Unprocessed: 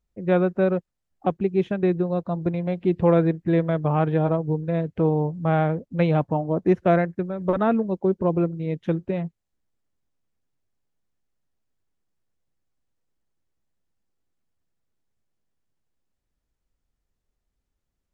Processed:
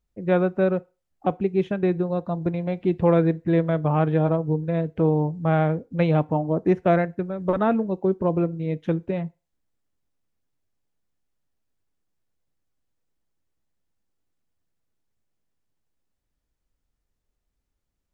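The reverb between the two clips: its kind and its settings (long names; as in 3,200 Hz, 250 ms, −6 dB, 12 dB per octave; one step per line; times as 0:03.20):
feedback delay network reverb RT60 0.32 s, low-frequency decay 0.7×, high-frequency decay 0.9×, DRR 17 dB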